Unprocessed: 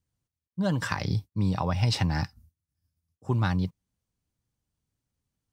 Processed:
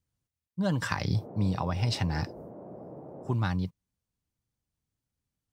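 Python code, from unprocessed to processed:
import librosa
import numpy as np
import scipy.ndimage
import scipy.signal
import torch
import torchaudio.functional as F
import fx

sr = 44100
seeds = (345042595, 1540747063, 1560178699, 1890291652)

y = fx.rider(x, sr, range_db=10, speed_s=0.5)
y = fx.dmg_noise_band(y, sr, seeds[0], low_hz=110.0, high_hz=670.0, level_db=-43.0, at=(1.13, 3.33), fade=0.02)
y = y * librosa.db_to_amplitude(-1.5)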